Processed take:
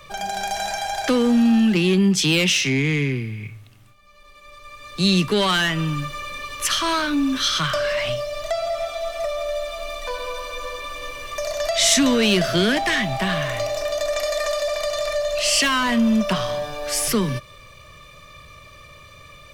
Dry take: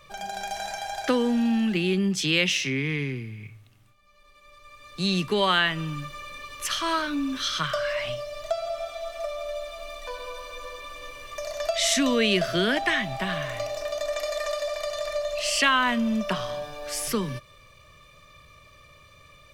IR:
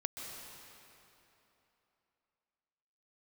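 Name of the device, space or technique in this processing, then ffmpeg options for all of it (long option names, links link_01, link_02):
one-band saturation: -filter_complex "[0:a]acrossover=split=260|3900[link_01][link_02][link_03];[link_02]asoftclip=type=tanh:threshold=-26.5dB[link_04];[link_01][link_04][link_03]amix=inputs=3:normalize=0,volume=8dB"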